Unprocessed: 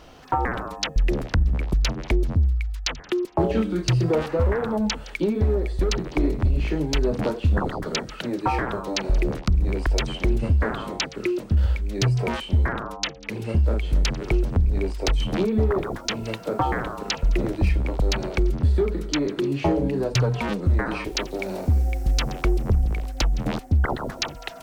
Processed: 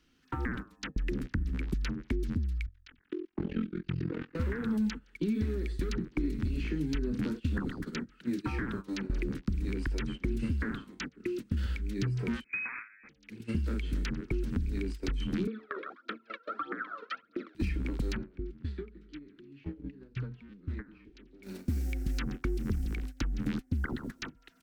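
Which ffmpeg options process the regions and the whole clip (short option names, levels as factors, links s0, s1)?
-filter_complex "[0:a]asettb=1/sr,asplit=3[s0][s1][s2];[s0]atrim=end=2.664[s3];[s1]atrim=start=2.66:end=4.35,asetpts=PTS-STARTPTS,afade=t=in:d=0.004:c=qsin,afade=t=out:st=1.686:d=0.004:c=qsin,lowpass=2400,lowshelf=f=170:g=-4,tremolo=f=43:d=1[s4];[s2]atrim=start=4.346[s5];[s3][s4]acrossfade=d=0.004:c1=hsin:c2=qsin[s6];[s6][s5]acrossfade=d=0.004:c1=qsin:c2=hsin,asettb=1/sr,asplit=3[s7][s8][s9];[s7]atrim=end=12.444[s10];[s8]atrim=start=12.44:end=13.09,asetpts=PTS-STARTPTS,afade=t=in:d=0.004:c=qsin,afade=t=out:st=0.646:d=0.004:c=qsin,acrusher=bits=3:mode=log:mix=0:aa=0.000001,lowpass=f=2200:t=q:w=0.5098,lowpass=f=2200:t=q:w=0.6013,lowpass=f=2200:t=q:w=0.9,lowpass=f=2200:t=q:w=2.563,afreqshift=-2600[s11];[s9]atrim=start=13.086[s12];[s10][s11]acrossfade=d=0.004:c1=hsin:c2=qsin[s13];[s13][s12]acrossfade=d=0.004:c1=qsin:c2=hsin,asettb=1/sr,asplit=3[s14][s15][s16];[s14]atrim=end=15.474[s17];[s15]atrim=start=15.47:end=17.55,asetpts=PTS-STARTPTS,afade=t=in:d=0.004:c=qsin,afade=t=out:st=2.076:d=0.004:c=qsin,aphaser=in_gain=1:out_gain=1:delay=2.2:decay=0.75:speed=1.6:type=triangular,highpass=f=380:w=0.5412,highpass=f=380:w=1.3066,equalizer=f=390:t=q:w=4:g=-4,equalizer=f=610:t=q:w=4:g=5,equalizer=f=890:t=q:w=4:g=-10,equalizer=f=1300:t=q:w=4:g=10,equalizer=f=2000:t=q:w=4:g=-4,equalizer=f=2800:t=q:w=4:g=-8,lowpass=f=3400:w=0.5412,lowpass=f=3400:w=1.3066[s18];[s16]atrim=start=17.546[s19];[s17][s18]acrossfade=d=0.004:c1=hsin:c2=qsin[s20];[s20][s19]acrossfade=d=0.004:c1=qsin:c2=hsin,asettb=1/sr,asplit=3[s21][s22][s23];[s21]atrim=end=18.174[s24];[s22]atrim=start=18.17:end=21.43,asetpts=PTS-STARTPTS,afade=t=in:d=0.004:c=qsin,afade=t=out:st=3.256:d=0.004:c=qsin,lowpass=3200,acrossover=split=95|540[s25][s26][s27];[s25]acompressor=threshold=0.0224:ratio=4[s28];[s26]acompressor=threshold=0.0224:ratio=4[s29];[s27]acompressor=threshold=0.00794:ratio=4[s30];[s28][s29][s30]amix=inputs=3:normalize=0[s31];[s23]atrim=start=21.426[s32];[s24][s31]acrossfade=d=0.004:c1=hsin:c2=qsin[s33];[s33][s32]acrossfade=d=0.004:c1=qsin:c2=hsin,agate=range=0.141:threshold=0.0398:ratio=16:detection=peak,firequalizer=gain_entry='entry(140,0);entry(240,8);entry(630,-17);entry(1500,4)':delay=0.05:min_phase=1,acrossover=split=260|1800[s34][s35][s36];[s34]acompressor=threshold=0.0562:ratio=4[s37];[s35]acompressor=threshold=0.0251:ratio=4[s38];[s36]acompressor=threshold=0.00708:ratio=4[s39];[s37][s38][s39]amix=inputs=3:normalize=0,volume=0.531"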